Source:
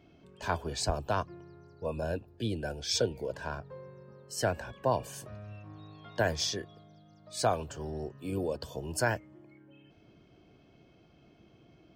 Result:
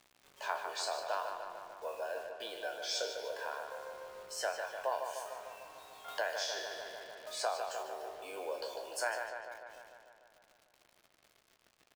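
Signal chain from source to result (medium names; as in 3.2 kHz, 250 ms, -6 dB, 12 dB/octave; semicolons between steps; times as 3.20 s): spectral sustain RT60 0.34 s; high-pass 580 Hz 24 dB/octave; treble shelf 4.7 kHz -7.5 dB; compression 1.5:1, threshold -48 dBFS, peak gain reduction 9 dB; bit crusher 10-bit; doubling 15 ms -13.5 dB; filtered feedback delay 149 ms, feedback 69%, low-pass 4.4 kHz, level -6 dB; 6.08–7.83 s: three bands compressed up and down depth 40%; trim +2.5 dB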